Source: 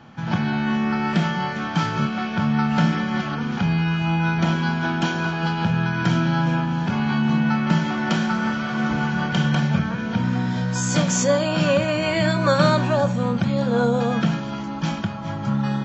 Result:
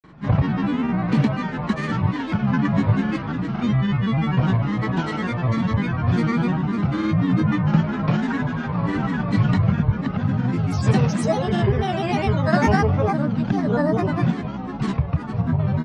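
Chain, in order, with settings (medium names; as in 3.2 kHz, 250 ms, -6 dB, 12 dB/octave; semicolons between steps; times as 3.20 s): treble shelf 3.1 kHz -11.5 dB; granulator 100 ms, pitch spread up and down by 7 st; bass shelf 94 Hz +10.5 dB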